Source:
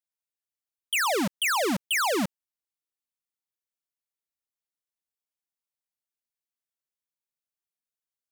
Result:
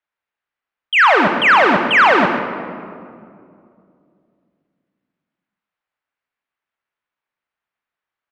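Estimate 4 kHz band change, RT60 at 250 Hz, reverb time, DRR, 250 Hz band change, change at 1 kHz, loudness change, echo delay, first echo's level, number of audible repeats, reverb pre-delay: +8.0 dB, 3.1 s, 2.3 s, 4.0 dB, +9.5 dB, +16.5 dB, +13.5 dB, 133 ms, -9.5 dB, 1, 25 ms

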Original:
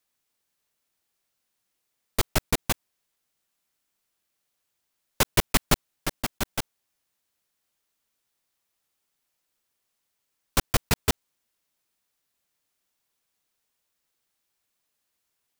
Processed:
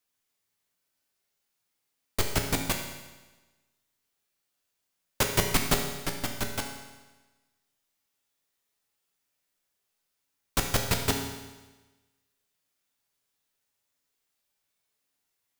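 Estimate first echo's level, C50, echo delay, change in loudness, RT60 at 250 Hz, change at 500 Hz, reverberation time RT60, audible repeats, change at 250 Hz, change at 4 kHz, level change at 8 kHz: no echo, 5.0 dB, no echo, -2.0 dB, 1.2 s, -1.0 dB, 1.2 s, no echo, -1.5 dB, -1.5 dB, -1.5 dB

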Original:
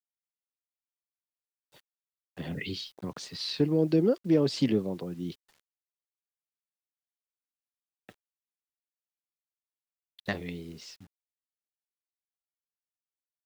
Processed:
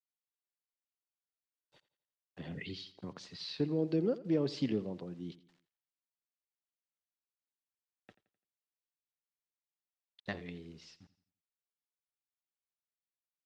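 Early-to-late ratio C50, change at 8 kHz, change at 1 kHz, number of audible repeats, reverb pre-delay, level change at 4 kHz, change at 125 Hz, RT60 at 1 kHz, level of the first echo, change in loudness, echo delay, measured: no reverb, under -10 dB, -7.5 dB, 3, no reverb, -8.5 dB, -7.5 dB, no reverb, -17.5 dB, -7.5 dB, 85 ms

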